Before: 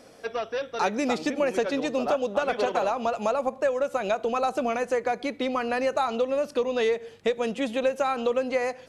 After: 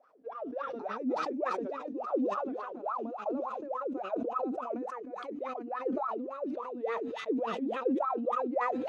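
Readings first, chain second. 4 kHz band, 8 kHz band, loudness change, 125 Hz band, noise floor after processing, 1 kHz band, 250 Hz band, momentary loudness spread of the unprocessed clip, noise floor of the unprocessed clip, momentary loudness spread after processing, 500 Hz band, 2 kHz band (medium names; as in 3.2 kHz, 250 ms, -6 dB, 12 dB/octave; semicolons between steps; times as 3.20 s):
-15.5 dB, under -20 dB, -8.0 dB, no reading, -44 dBFS, -6.0 dB, -4.0 dB, 3 LU, -50 dBFS, 7 LU, -9.5 dB, -12.5 dB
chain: feedback echo behind a high-pass 350 ms, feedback 68%, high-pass 4 kHz, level -3.5 dB; wah-wah 3.5 Hz 250–1300 Hz, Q 20; decay stretcher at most 26 dB/s; trim +2 dB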